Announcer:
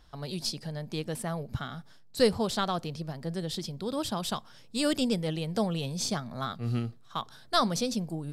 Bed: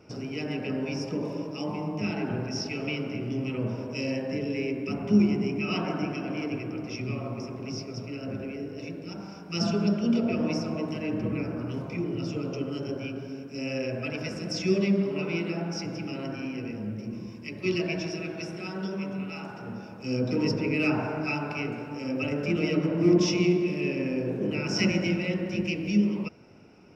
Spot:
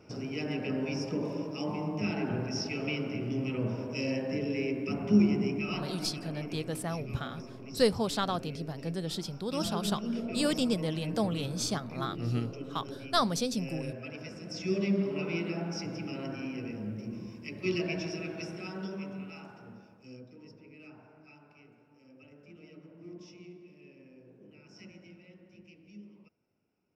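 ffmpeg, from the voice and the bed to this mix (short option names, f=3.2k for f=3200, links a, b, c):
-filter_complex "[0:a]adelay=5600,volume=-1.5dB[a];[1:a]volume=4dB,afade=t=out:st=5.49:d=0.41:silence=0.421697,afade=t=in:st=14.46:d=0.56:silence=0.501187,afade=t=out:st=18.44:d=1.87:silence=0.0707946[b];[a][b]amix=inputs=2:normalize=0"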